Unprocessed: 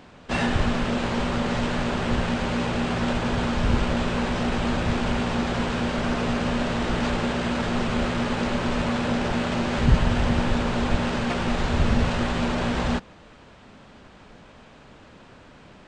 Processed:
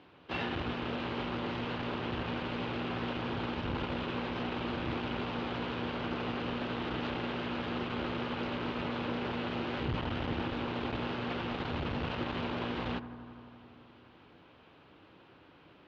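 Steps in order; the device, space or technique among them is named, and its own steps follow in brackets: analogue delay pedal into a guitar amplifier (analogue delay 83 ms, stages 1024, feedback 83%, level -15 dB; tube stage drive 17 dB, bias 0.55; speaker cabinet 89–4100 Hz, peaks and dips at 130 Hz -3 dB, 220 Hz -10 dB, 320 Hz +6 dB, 630 Hz -4 dB, 1800 Hz -3 dB, 2900 Hz +3 dB); gain -6.5 dB

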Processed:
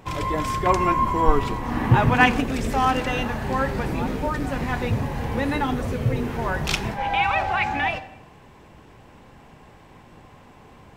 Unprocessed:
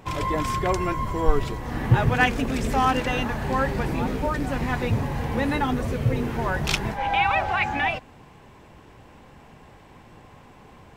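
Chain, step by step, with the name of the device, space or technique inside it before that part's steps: saturated reverb return (on a send at -11 dB: reverb RT60 0.85 s, pre-delay 24 ms + soft clip -20 dBFS, distortion -11 dB); 0.66–2.41 on the sum: fifteen-band EQ 250 Hz +7 dB, 1000 Hz +8 dB, 2500 Hz +4 dB

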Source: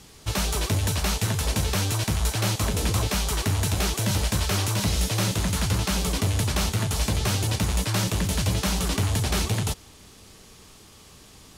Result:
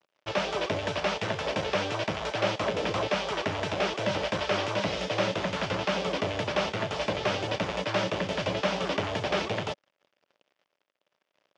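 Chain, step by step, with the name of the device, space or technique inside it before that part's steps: blown loudspeaker (crossover distortion -42 dBFS; speaker cabinet 240–4300 Hz, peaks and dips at 240 Hz -5 dB, 580 Hz +9 dB, 4100 Hz -8 dB); gain +1.5 dB

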